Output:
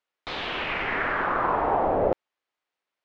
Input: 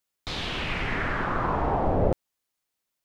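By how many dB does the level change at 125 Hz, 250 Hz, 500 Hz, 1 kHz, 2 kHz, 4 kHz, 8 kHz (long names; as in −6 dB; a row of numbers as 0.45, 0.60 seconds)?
−9.5 dB, −3.0 dB, +2.5 dB, +3.5 dB, +3.0 dB, −1.0 dB, can't be measured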